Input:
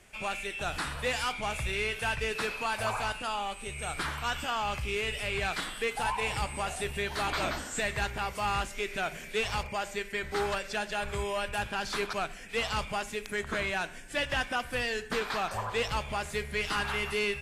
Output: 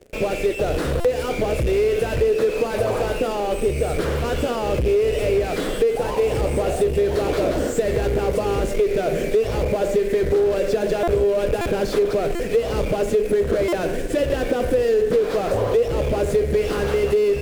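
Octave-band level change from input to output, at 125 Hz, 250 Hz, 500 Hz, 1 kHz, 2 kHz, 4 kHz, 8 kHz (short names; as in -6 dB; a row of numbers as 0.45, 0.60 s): +13.5, +15.5, +18.0, +3.5, -0.5, 0.0, +3.5 dB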